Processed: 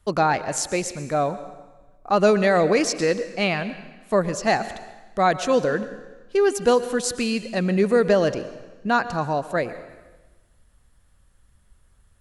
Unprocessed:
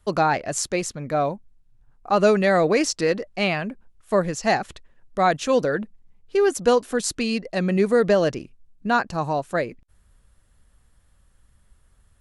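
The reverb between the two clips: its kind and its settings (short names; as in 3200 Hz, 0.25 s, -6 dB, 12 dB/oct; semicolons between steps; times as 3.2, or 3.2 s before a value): plate-style reverb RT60 1.2 s, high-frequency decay 0.95×, pre-delay 0.1 s, DRR 13 dB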